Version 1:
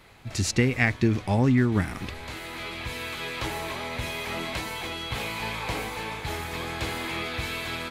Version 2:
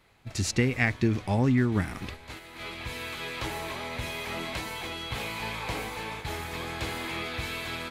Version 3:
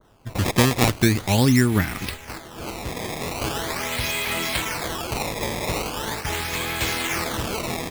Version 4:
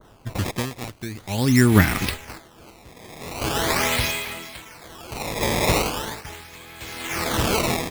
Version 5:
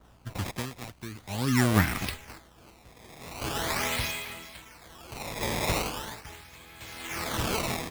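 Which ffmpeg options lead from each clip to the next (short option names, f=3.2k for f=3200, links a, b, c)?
-af "agate=range=-7dB:threshold=-36dB:ratio=16:detection=peak,volume=-2.5dB"
-af "acrusher=samples=17:mix=1:aa=0.000001:lfo=1:lforange=27.2:lforate=0.41,adynamicequalizer=threshold=0.00501:dfrequency=1600:dqfactor=0.7:tfrequency=1600:tqfactor=0.7:attack=5:release=100:ratio=0.375:range=3:mode=boostabove:tftype=highshelf,volume=6dB"
-af "aeval=exprs='val(0)*pow(10,-22*(0.5-0.5*cos(2*PI*0.53*n/s))/20)':c=same,volume=6.5dB"
-filter_complex "[0:a]aeval=exprs='val(0)+0.00251*(sin(2*PI*60*n/s)+sin(2*PI*2*60*n/s)/2+sin(2*PI*3*60*n/s)/3+sin(2*PI*4*60*n/s)/4+sin(2*PI*5*60*n/s)/5)':c=same,acrossover=split=390[a][b];[a]acrusher=samples=41:mix=1:aa=0.000001:lfo=1:lforange=24.6:lforate=2.5[c];[c][b]amix=inputs=2:normalize=0,volume=-7.5dB"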